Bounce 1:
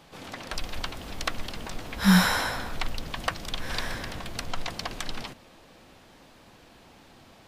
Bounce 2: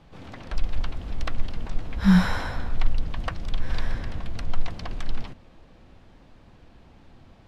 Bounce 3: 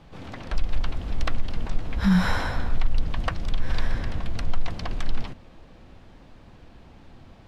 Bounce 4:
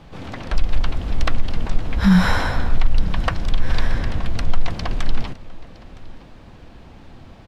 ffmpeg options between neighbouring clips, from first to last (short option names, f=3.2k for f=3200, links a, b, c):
-af "aemphasis=mode=reproduction:type=bsi,volume=-4dB"
-af "alimiter=limit=-14.5dB:level=0:latency=1:release=101,volume=3dB"
-af "aecho=1:1:964:0.0841,volume=6dB"